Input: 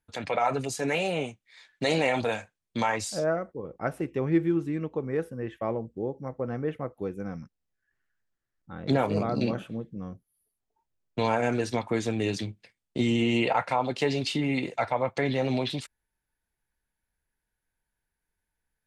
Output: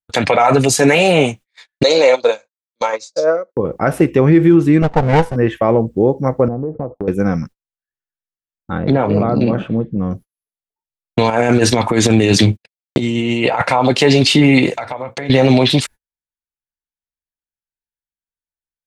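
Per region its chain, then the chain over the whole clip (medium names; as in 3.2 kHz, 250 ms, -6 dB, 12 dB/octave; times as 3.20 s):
1.83–3.57 s: cabinet simulation 400–6900 Hz, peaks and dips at 520 Hz +9 dB, 740 Hz -8 dB, 1.8 kHz -8 dB, 2.9 kHz -7 dB, 4.1 kHz +7 dB, 6.3 kHz +6 dB + upward expansion 2.5:1, over -37 dBFS
4.82–5.36 s: comb filter that takes the minimum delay 1.4 ms + low-pass 8.2 kHz
6.48–7.08 s: steep low-pass 930 Hz + compression 10:1, threshold -37 dBFS
8.78–10.11 s: compression 2.5:1, threshold -31 dBFS + tape spacing loss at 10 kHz 28 dB
11.30–13.62 s: gate -50 dBFS, range -56 dB + compressor with a negative ratio -30 dBFS, ratio -0.5
14.75–15.30 s: compression 8:1, threshold -40 dBFS + hum notches 60/120/180/240/300/360/420/480/540 Hz
whole clip: gate -50 dBFS, range -38 dB; loudness maximiser +20.5 dB; trim -1 dB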